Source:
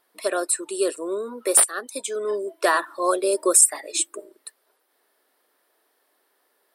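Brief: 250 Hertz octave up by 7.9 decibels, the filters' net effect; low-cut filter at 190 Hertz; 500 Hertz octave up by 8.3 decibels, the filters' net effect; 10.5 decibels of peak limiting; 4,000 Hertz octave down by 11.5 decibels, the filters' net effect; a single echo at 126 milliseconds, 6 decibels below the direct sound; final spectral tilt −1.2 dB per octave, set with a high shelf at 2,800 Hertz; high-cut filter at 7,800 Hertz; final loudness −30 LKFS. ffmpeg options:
ffmpeg -i in.wav -af "highpass=190,lowpass=7800,equalizer=frequency=250:width_type=o:gain=8,equalizer=frequency=500:width_type=o:gain=8.5,highshelf=frequency=2800:gain=-7.5,equalizer=frequency=4000:width_type=o:gain=-8,alimiter=limit=-12.5dB:level=0:latency=1,aecho=1:1:126:0.501,volume=-8dB" out.wav

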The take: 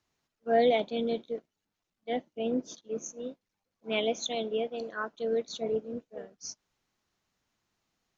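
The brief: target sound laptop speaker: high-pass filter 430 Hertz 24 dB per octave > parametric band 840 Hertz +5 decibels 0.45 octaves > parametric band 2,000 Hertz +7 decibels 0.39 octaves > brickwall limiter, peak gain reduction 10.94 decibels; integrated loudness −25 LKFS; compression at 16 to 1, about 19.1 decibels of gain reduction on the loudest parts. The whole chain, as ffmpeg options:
ffmpeg -i in.wav -af "acompressor=threshold=-39dB:ratio=16,highpass=frequency=430:width=0.5412,highpass=frequency=430:width=1.3066,equalizer=frequency=840:width_type=o:width=0.45:gain=5,equalizer=frequency=2000:width_type=o:width=0.39:gain=7,volume=25dB,alimiter=limit=-15.5dB:level=0:latency=1" out.wav

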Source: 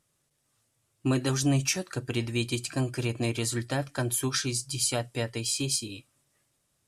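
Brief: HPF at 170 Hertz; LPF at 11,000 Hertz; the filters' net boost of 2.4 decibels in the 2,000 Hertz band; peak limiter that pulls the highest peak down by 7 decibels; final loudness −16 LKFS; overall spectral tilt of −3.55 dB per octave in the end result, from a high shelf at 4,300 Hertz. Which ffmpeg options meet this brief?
ffmpeg -i in.wav -af "highpass=170,lowpass=11000,equalizer=frequency=2000:width_type=o:gain=4,highshelf=frequency=4300:gain=-3.5,volume=16dB,alimiter=limit=-4dB:level=0:latency=1" out.wav

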